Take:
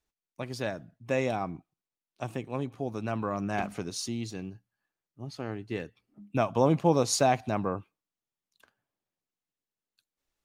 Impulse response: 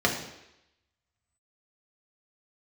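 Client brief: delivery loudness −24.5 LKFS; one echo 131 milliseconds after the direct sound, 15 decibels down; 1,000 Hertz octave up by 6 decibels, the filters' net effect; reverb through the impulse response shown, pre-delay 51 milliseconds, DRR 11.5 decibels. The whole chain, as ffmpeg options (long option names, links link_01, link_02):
-filter_complex "[0:a]equalizer=frequency=1000:width_type=o:gain=8.5,aecho=1:1:131:0.178,asplit=2[link_01][link_02];[1:a]atrim=start_sample=2205,adelay=51[link_03];[link_02][link_03]afir=irnorm=-1:irlink=0,volume=-25.5dB[link_04];[link_01][link_04]amix=inputs=2:normalize=0,volume=3dB"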